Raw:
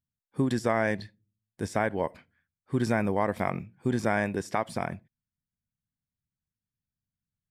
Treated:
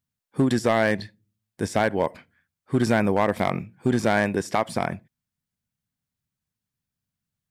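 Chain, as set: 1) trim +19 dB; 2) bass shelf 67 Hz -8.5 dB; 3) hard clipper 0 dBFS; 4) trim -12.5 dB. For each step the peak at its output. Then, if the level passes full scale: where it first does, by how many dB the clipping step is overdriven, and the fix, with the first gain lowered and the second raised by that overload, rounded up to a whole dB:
+6.5 dBFS, +6.5 dBFS, 0.0 dBFS, -12.5 dBFS; step 1, 6.5 dB; step 1 +12 dB, step 4 -5.5 dB

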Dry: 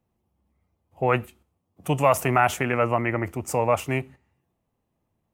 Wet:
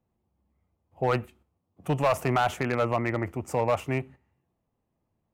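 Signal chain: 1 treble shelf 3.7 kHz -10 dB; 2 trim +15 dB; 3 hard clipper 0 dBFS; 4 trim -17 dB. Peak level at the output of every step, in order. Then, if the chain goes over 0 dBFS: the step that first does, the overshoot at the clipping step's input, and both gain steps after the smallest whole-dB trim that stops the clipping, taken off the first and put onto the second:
-6.5 dBFS, +8.5 dBFS, 0.0 dBFS, -17.0 dBFS; step 2, 8.5 dB; step 2 +6 dB, step 4 -8 dB

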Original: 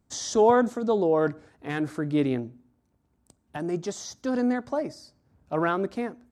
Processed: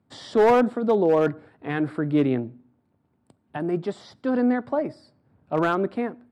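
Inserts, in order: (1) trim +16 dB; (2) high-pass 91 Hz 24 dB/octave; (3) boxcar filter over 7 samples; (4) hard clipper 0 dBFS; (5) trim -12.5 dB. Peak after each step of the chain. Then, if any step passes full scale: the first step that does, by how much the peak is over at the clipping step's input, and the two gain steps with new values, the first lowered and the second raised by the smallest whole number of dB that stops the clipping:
+7.5 dBFS, +7.0 dBFS, +7.0 dBFS, 0.0 dBFS, -12.5 dBFS; step 1, 7.0 dB; step 1 +9 dB, step 5 -5.5 dB

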